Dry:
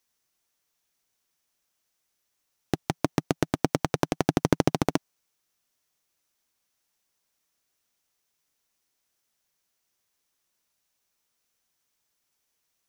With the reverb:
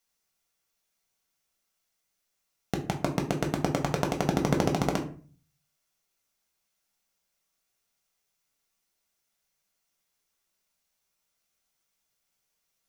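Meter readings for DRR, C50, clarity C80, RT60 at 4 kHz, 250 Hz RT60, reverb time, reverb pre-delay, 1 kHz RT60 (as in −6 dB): 1.5 dB, 11.0 dB, 16.0 dB, 0.30 s, 0.60 s, 0.40 s, 4 ms, 0.40 s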